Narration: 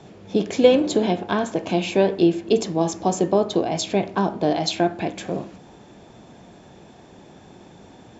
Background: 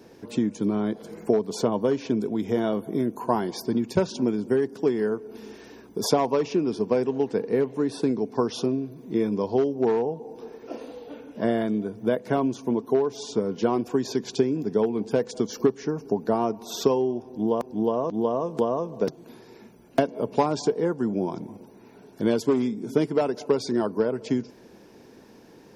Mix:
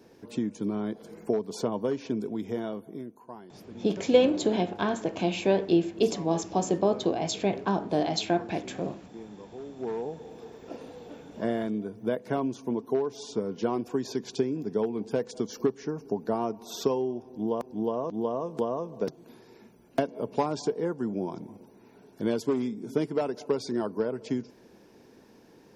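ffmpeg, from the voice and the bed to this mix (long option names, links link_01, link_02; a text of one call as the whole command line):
ffmpeg -i stem1.wav -i stem2.wav -filter_complex "[0:a]adelay=3500,volume=-5.5dB[link_01];[1:a]volume=10dB,afade=type=out:start_time=2.32:duration=0.91:silence=0.177828,afade=type=in:start_time=9.59:duration=0.71:silence=0.16788[link_02];[link_01][link_02]amix=inputs=2:normalize=0" out.wav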